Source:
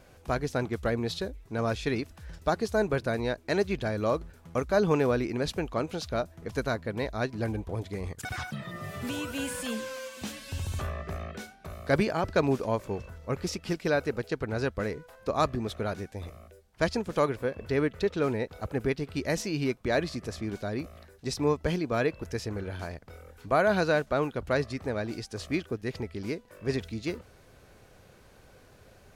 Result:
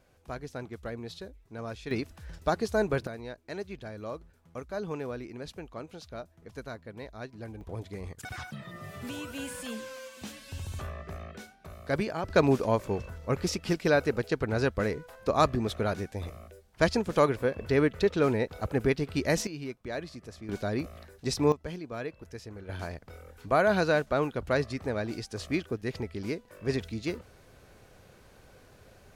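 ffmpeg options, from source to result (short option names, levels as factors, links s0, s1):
-af "asetnsamples=n=441:p=0,asendcmd='1.91 volume volume -0.5dB;3.07 volume volume -11dB;7.61 volume volume -4.5dB;12.3 volume volume 2.5dB;19.47 volume volume -9dB;20.49 volume volume 2dB;21.52 volume volume -9.5dB;22.69 volume volume 0dB',volume=0.335"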